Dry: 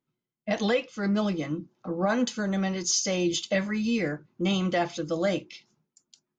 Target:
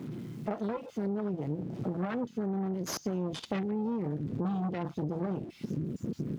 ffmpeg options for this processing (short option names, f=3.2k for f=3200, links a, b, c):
-af "aeval=exprs='val(0)+0.5*0.0355*sgn(val(0))':c=same,afwtdn=0.0398,asubboost=boost=10:cutoff=160,aeval=exprs='0.376*(cos(1*acos(clip(val(0)/0.376,-1,1)))-cos(1*PI/2))+0.0944*(cos(6*acos(clip(val(0)/0.376,-1,1)))-cos(6*PI/2))':c=same,highpass=120,highshelf=f=5.5k:g=-10.5,acompressor=threshold=-31dB:ratio=6"